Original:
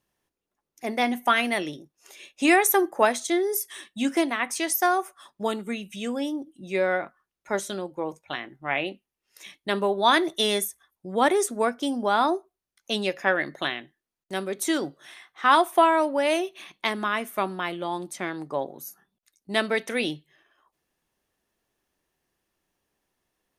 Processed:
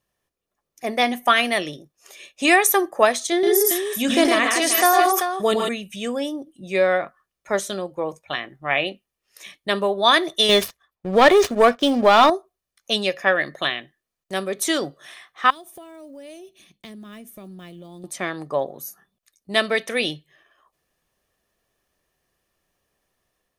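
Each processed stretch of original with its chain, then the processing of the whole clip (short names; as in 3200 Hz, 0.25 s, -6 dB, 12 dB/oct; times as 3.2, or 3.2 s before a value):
3.32–5.69 bell 440 Hz +4.5 dB 0.62 oct + tapped delay 0.11/0.145/0.153/0.389 s -5.5/-5.5/-9.5/-8.5 dB + sustainer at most 34 dB/s
10.49–12.3 median filter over 5 samples + high shelf 7000 Hz -7 dB + sample leveller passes 2
15.5–18.04 block floating point 7-bit + EQ curve 220 Hz 0 dB, 1100 Hz -23 dB, 6500 Hz -7 dB + compressor 16:1, threshold -39 dBFS
whole clip: dynamic EQ 3900 Hz, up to +4 dB, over -36 dBFS, Q 0.86; comb 1.7 ms, depth 34%; AGC gain up to 4 dB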